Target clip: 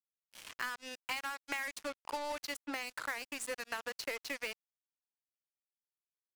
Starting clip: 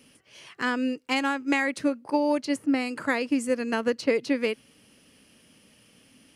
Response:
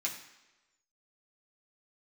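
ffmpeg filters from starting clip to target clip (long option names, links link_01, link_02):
-af "highpass=930,highshelf=frequency=3800:gain=-2.5,acompressor=threshold=-40dB:ratio=4,acrusher=bits=6:mix=0:aa=0.5,volume=2.5dB"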